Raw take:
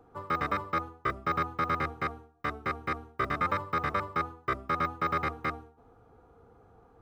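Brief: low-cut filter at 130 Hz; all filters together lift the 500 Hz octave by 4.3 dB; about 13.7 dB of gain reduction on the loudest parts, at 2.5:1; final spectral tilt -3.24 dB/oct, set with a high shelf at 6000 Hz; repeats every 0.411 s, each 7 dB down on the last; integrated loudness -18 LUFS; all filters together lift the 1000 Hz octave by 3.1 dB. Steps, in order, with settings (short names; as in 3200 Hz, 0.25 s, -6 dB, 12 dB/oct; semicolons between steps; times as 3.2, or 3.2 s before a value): HPF 130 Hz; bell 500 Hz +4.5 dB; bell 1000 Hz +3 dB; high shelf 6000 Hz +8 dB; compressor 2.5:1, threshold -44 dBFS; feedback echo 0.411 s, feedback 45%, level -7 dB; gain +23 dB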